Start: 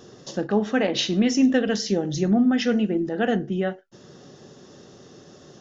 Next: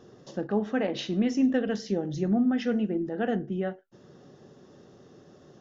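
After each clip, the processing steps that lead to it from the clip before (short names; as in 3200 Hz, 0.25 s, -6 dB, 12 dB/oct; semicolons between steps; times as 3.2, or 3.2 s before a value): high shelf 2900 Hz -11 dB; gain -5 dB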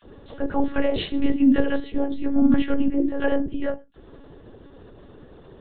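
dispersion lows, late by 41 ms, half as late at 1200 Hz; on a send at -19.5 dB: reverb RT60 0.15 s, pre-delay 3 ms; on the sum: monotone LPC vocoder at 8 kHz 280 Hz; gain +7 dB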